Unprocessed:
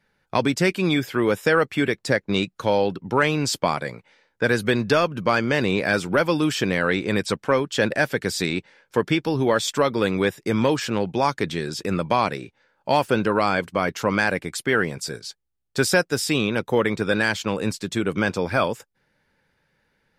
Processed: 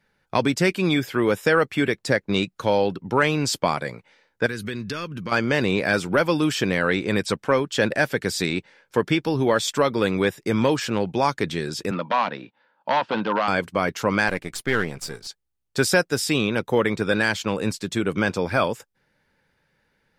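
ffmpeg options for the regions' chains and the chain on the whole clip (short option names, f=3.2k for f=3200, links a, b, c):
-filter_complex "[0:a]asettb=1/sr,asplit=3[a][b][c];[a]atrim=end=4.464[d];[b]atrim=start=4.46:end=5.32,asetpts=PTS-STARTPTS,afade=t=in:d=0.004:c=qsin,afade=t=out:st=0.856:d=0.004:c=qsin,equalizer=f=700:w=1.8:g=-15,acompressor=threshold=-29dB:ratio=2.5:attack=3.2:release=140:knee=1:detection=peak[e];[c]atrim=start=5.316[f];[d][e]acrossfade=d=0.004:c1=hsin:c2=qsin[g];[g][f]acrossfade=d=0.004:c1=qsin:c2=hsin,asettb=1/sr,asplit=3[h][i][j];[h]atrim=end=11.914[k];[i]atrim=start=11.91:end=13.48,asetpts=PTS-STARTPTS,afade=t=in:d=0.004:c=qsin,afade=t=out:st=1.566:d=0.004:c=qsin,aeval=exprs='0.2*(abs(mod(val(0)/0.2+3,4)-2)-1)':c=same,highpass=f=150:w=0.5412,highpass=f=150:w=1.3066,equalizer=f=160:t=q:w=4:g=-6,equalizer=f=390:t=q:w=4:g=-9,equalizer=f=940:t=q:w=4:g=6,equalizer=f=2.2k:t=q:w=4:g=-5,lowpass=f=4k:w=0.5412,lowpass=f=4k:w=1.3066[l];[j]atrim=start=13.476[m];[k][l]acrossfade=d=0.004:c1=hsin:c2=qsin[n];[n][m]acrossfade=d=0.004:c1=qsin:c2=hsin,asettb=1/sr,asplit=3[o][p][q];[o]atrim=end=14.284[r];[p]atrim=start=14.28:end=15.27,asetpts=PTS-STARTPTS,afade=t=in:d=0.004:c=qsin,afade=t=out:st=0.986:d=0.004:c=qsin,aeval=exprs='if(lt(val(0),0),0.447*val(0),val(0))':c=same,bandreject=f=640:w=13[s];[q]atrim=start=15.266[t];[r][s]acrossfade=d=0.004:c1=hsin:c2=qsin[u];[u][t]acrossfade=d=0.004:c1=qsin:c2=hsin"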